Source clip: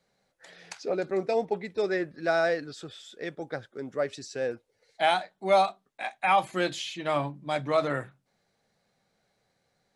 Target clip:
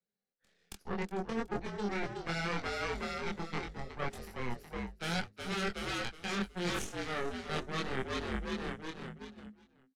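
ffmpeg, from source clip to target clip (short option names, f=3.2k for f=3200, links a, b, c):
-filter_complex "[0:a]aeval=exprs='0.282*(cos(1*acos(clip(val(0)/0.282,-1,1)))-cos(1*PI/2))+0.0251*(cos(2*acos(clip(val(0)/0.282,-1,1)))-cos(2*PI/2))+0.0708*(cos(6*acos(clip(val(0)/0.282,-1,1)))-cos(6*PI/2))+0.0447*(cos(7*acos(clip(val(0)/0.282,-1,1)))-cos(7*PI/2))':c=same,afftfilt=real='re*lt(hypot(re,im),0.562)':imag='im*lt(hypot(re,im),0.562)':win_size=1024:overlap=0.75,asplit=6[a][b][c][d][e][f];[b]adelay=369,afreqshift=-53,volume=-9dB[g];[c]adelay=738,afreqshift=-106,volume=-15.7dB[h];[d]adelay=1107,afreqshift=-159,volume=-22.5dB[i];[e]adelay=1476,afreqshift=-212,volume=-29.2dB[j];[f]adelay=1845,afreqshift=-265,volume=-36dB[k];[a][g][h][i][j][k]amix=inputs=6:normalize=0,acrossover=split=140|1700[l][m][n];[m]volume=18dB,asoftclip=hard,volume=-18dB[o];[l][o][n]amix=inputs=3:normalize=0,equalizer=f=110:t=o:w=1.3:g=-3.5,flanger=delay=22.5:depth=2.3:speed=0.73,equalizer=f=200:t=o:w=0.33:g=12,equalizer=f=400:t=o:w=0.33:g=7,equalizer=f=630:t=o:w=0.33:g=-5,equalizer=f=1k:t=o:w=0.33:g=-7,agate=range=-9dB:threshold=-57dB:ratio=16:detection=peak,areverse,acompressor=threshold=-41dB:ratio=10,areverse,volume=8.5dB"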